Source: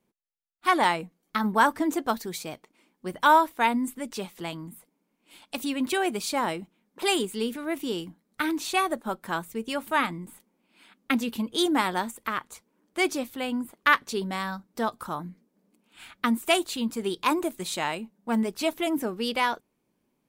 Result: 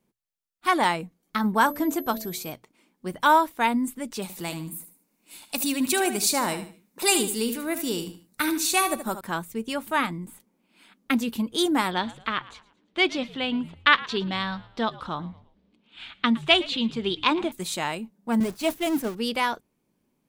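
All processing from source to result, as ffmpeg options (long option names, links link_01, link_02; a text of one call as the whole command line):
ffmpeg -i in.wav -filter_complex "[0:a]asettb=1/sr,asplit=3[link_01][link_02][link_03];[link_01]atrim=end=1.614[link_04];[link_02]atrim=start=1.61:end=2.52,asetpts=PTS-STARTPTS,afade=type=in:duration=0.004:curve=qsin,afade=type=out:start_time=0.906:duration=0.004:curve=qsin,bandreject=frequency=72.64:width_type=h:width=4,bandreject=frequency=145.28:width_type=h:width=4,bandreject=frequency=217.92:width_type=h:width=4,bandreject=frequency=290.56:width_type=h:width=4,bandreject=frequency=363.2:width_type=h:width=4,bandreject=frequency=435.84:width_type=h:width=4,bandreject=frequency=508.48:width_type=h:width=4,bandreject=frequency=581.12:width_type=h:width=4,bandreject=frequency=653.76:width_type=h:width=4,aeval=exprs='val(0)+0.00794*sin(2*PI*12000*n/s)':channel_layout=same,bandreject=frequency=1900:width=20[link_05];[link_03]atrim=start=2.516[link_06];[link_04][link_05]acrossfade=duration=0.004:curve1=hsin:curve2=qsin[link_07];[link_07][link_06]acrossfade=duration=0.004:curve1=qsin:curve2=hsin,asettb=1/sr,asplit=3[link_08][link_09][link_10];[link_08]atrim=end=4.224[link_11];[link_09]atrim=start=4.22:end=9.21,asetpts=PTS-STARTPTS,afade=type=in:duration=0.004:curve=qsin,afade=type=out:start_time=4.986:duration=0.004:curve=qsin,highshelf=frequency=4300:gain=11.5,bandreject=frequency=3200:width=9.3,aecho=1:1:75|150|225:0.299|0.0925|0.0287,atrim=end_sample=220059[link_12];[link_10]atrim=start=9.206[link_13];[link_11][link_12]acrossfade=duration=0.004:curve1=hsin:curve2=qsin[link_14];[link_14][link_13]acrossfade=duration=0.004:curve1=qsin:curve2=hsin,asettb=1/sr,asplit=3[link_15][link_16][link_17];[link_15]atrim=end=11.914[link_18];[link_16]atrim=start=11.91:end=17.52,asetpts=PTS-STARTPTS,afade=type=in:duration=0.004:curve=qsin,afade=type=out:start_time=5.606:duration=0.004:curve=qsin,lowpass=frequency=3500:width_type=q:width=2.7,asplit=4[link_19][link_20][link_21][link_22];[link_20]adelay=113,afreqshift=-80,volume=-19.5dB[link_23];[link_21]adelay=226,afreqshift=-160,volume=-27.9dB[link_24];[link_22]adelay=339,afreqshift=-240,volume=-36.3dB[link_25];[link_19][link_23][link_24][link_25]amix=inputs=4:normalize=0,atrim=end_sample=247401[link_26];[link_17]atrim=start=17.516[link_27];[link_18][link_26]acrossfade=duration=0.004:curve1=hsin:curve2=qsin[link_28];[link_28][link_27]acrossfade=duration=0.004:curve1=qsin:curve2=hsin,asettb=1/sr,asplit=3[link_29][link_30][link_31];[link_29]atrim=end=18.404[link_32];[link_30]atrim=start=18.4:end=19.15,asetpts=PTS-STARTPTS,afade=type=in:duration=0.004:curve=qsin,afade=type=out:start_time=0.746:duration=0.004:curve=qsin,aeval=exprs='val(0)+0.5*0.0355*sgn(val(0))':channel_layout=same,agate=range=-33dB:threshold=-23dB:ratio=3:release=100:detection=peak,bandreject=frequency=50:width_type=h:width=6,bandreject=frequency=100:width_type=h:width=6,bandreject=frequency=150:width_type=h:width=6[link_33];[link_31]atrim=start=19.146[link_34];[link_32][link_33]acrossfade=duration=0.004:curve1=hsin:curve2=qsin[link_35];[link_35][link_34]acrossfade=duration=0.004:curve1=qsin:curve2=hsin,bass=frequency=250:gain=4,treble=frequency=4000:gain=2,bandreject=frequency=60:width_type=h:width=6,bandreject=frequency=120:width_type=h:width=6" out.wav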